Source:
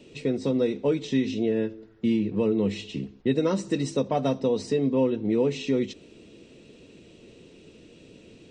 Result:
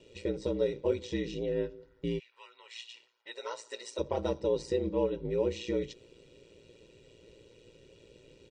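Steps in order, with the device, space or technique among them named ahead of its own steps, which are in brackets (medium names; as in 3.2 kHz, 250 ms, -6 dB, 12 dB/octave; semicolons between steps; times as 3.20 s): 2.18–3.98 s: high-pass 1.4 kHz -> 500 Hz 24 dB/octave; ring-modulated robot voice (ring modulator 58 Hz; comb 2.1 ms, depth 61%); trim -5 dB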